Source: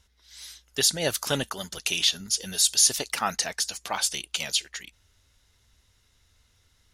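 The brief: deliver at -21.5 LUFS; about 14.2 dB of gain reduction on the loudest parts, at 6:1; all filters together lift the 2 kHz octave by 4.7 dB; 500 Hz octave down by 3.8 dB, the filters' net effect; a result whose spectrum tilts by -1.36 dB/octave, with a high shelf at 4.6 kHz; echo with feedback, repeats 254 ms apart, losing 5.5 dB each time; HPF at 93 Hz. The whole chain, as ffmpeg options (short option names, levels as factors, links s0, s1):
-af "highpass=93,equalizer=f=500:t=o:g=-5,equalizer=f=2000:t=o:g=5,highshelf=f=4600:g=6.5,acompressor=threshold=0.0447:ratio=6,aecho=1:1:254|508|762|1016|1270|1524|1778:0.531|0.281|0.149|0.079|0.0419|0.0222|0.0118,volume=2.37"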